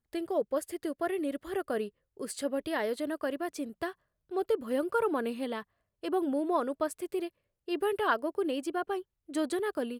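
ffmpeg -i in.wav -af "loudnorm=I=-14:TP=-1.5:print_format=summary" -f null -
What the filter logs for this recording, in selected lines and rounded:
Input Integrated:    -33.0 LUFS
Input True Peak:     -14.8 dBTP
Input LRA:             2.0 LU
Input Threshold:     -43.2 LUFS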